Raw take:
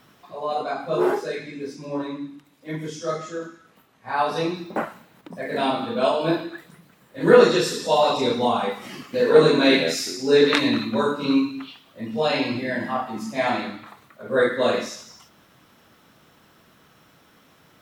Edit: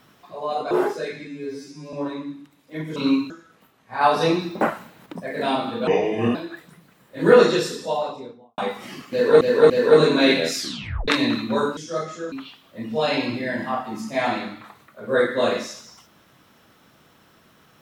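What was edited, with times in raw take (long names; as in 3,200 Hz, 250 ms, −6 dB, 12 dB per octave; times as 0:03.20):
0:00.71–0:00.98: remove
0:01.54–0:01.87: time-stretch 2×
0:02.90–0:03.45: swap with 0:11.20–0:11.54
0:04.16–0:05.35: clip gain +5 dB
0:06.02–0:06.36: play speed 71%
0:07.42–0:08.59: fade out and dull
0:09.13–0:09.42: repeat, 3 plays
0:10.01: tape stop 0.50 s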